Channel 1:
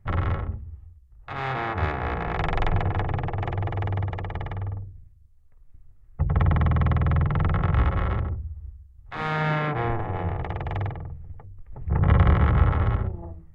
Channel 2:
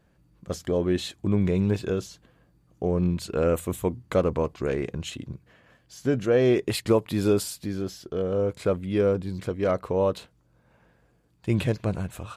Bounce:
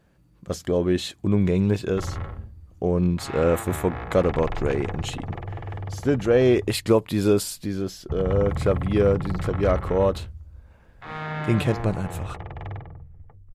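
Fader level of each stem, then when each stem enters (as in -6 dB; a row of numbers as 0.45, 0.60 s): -6.0, +2.5 dB; 1.90, 0.00 s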